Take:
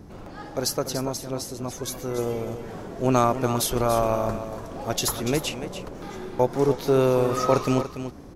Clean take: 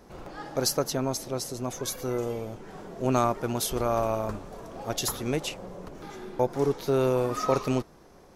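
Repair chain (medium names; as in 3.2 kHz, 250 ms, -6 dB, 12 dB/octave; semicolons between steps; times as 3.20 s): noise print and reduce 6 dB; inverse comb 288 ms -10.5 dB; trim 0 dB, from 2.18 s -4 dB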